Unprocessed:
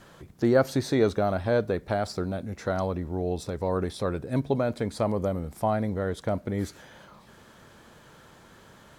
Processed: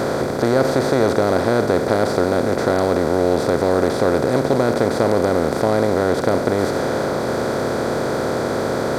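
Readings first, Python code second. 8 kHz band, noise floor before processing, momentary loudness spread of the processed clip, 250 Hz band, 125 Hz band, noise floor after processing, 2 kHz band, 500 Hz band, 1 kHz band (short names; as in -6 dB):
+13.0 dB, -54 dBFS, 4 LU, +9.5 dB, +6.5 dB, -23 dBFS, +13.0 dB, +11.5 dB, +11.5 dB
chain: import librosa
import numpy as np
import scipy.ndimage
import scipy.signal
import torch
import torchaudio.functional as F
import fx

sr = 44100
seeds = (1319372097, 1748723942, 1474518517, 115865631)

y = fx.bin_compress(x, sr, power=0.2)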